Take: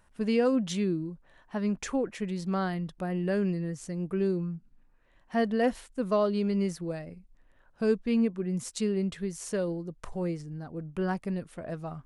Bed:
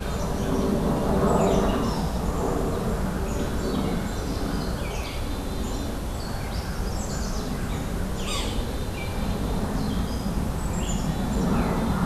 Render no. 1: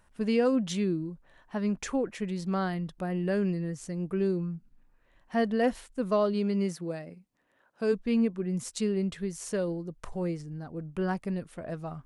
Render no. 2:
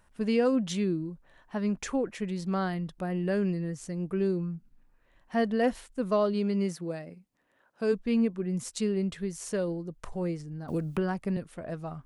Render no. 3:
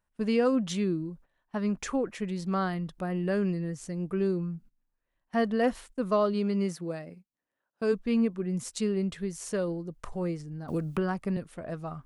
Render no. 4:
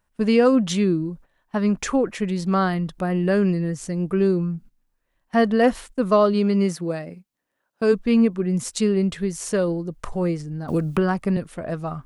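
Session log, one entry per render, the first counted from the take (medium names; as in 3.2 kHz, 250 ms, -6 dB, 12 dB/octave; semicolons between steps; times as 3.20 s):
6.33–7.92 s: high-pass 97 Hz -> 260 Hz
10.68–11.37 s: three bands compressed up and down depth 100%
dynamic bell 1.2 kHz, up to +5 dB, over -53 dBFS, Q 4.1; gate -50 dBFS, range -17 dB
trim +8.5 dB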